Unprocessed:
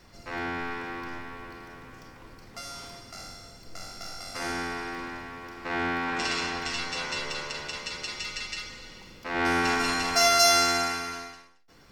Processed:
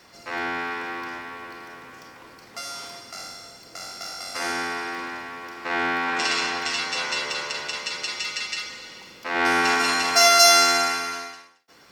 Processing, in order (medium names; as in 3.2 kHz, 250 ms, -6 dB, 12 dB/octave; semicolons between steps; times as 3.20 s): high-pass 450 Hz 6 dB/octave; trim +6 dB